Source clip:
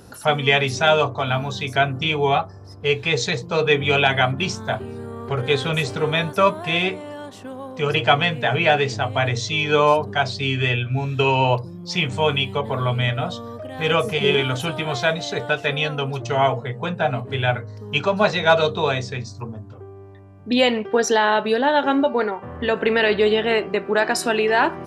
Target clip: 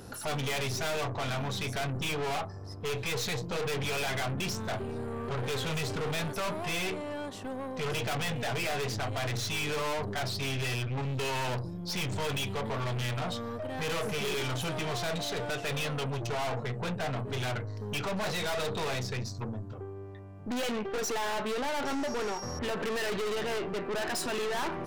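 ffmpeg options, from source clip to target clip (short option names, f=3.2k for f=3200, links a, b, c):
-filter_complex "[0:a]asettb=1/sr,asplit=3[a][b][c];[a]atrim=end=21.854[d];[b]atrim=start=21.85:end=22.59,asetpts=PTS-STARTPTS,afade=t=in:d=0.004:c=qsin,afade=t=out:st=0.736:d=0.004:c=qsin,aeval=exprs='val(0)+0.0112*sin(2*PI*5600*n/s)':c=same[e];[c]atrim=start=22.586[f];[d][e]acrossfade=d=0.004:c1=hsin:c2=qsin[g];[g][f]acrossfade=d=0.004:c1=qsin:c2=hsin,aeval=exprs='(tanh(35.5*val(0)+0.4)-tanh(0.4))/35.5':c=same"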